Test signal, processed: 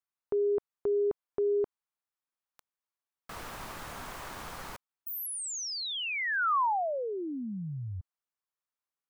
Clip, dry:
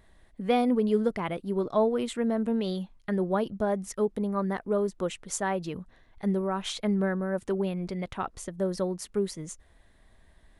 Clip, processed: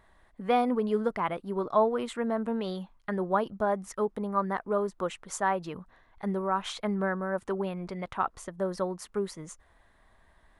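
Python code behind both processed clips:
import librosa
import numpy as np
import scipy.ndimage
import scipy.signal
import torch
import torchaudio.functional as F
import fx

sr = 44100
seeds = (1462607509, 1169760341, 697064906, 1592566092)

y = fx.peak_eq(x, sr, hz=1100.0, db=11.0, octaves=1.6)
y = y * 10.0 ** (-5.0 / 20.0)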